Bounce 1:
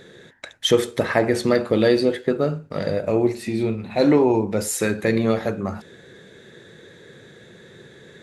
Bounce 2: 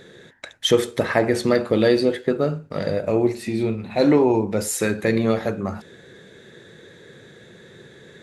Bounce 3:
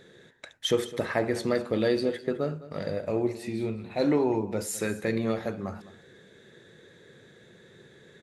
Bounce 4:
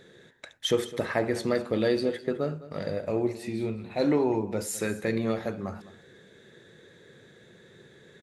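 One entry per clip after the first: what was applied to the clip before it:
no processing that can be heard
single-tap delay 208 ms −17 dB; level −8 dB
far-end echo of a speakerphone 90 ms, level −28 dB

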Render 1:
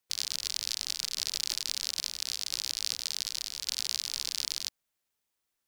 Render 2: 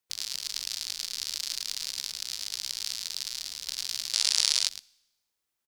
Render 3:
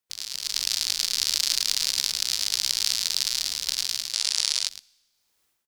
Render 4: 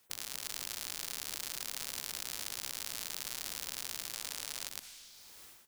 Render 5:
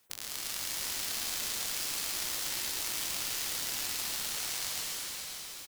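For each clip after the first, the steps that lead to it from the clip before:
single-tap delay 109 ms −4.5 dB; four-comb reverb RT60 1 s, combs from 25 ms, DRR 19.5 dB; gain on a spectral selection 0:04.14–0:04.67, 410–11,000 Hz +10 dB; level −2 dB
automatic gain control gain up to 16 dB; level −1 dB
brickwall limiter −9 dBFS, peak gain reduction 7.5 dB; every bin compressed towards the loudest bin 4 to 1; level −6 dB
on a send: single-tap delay 571 ms −11 dB; on the sum: dense smooth reverb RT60 3.7 s, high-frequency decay 1×, pre-delay 105 ms, DRR −4.5 dB

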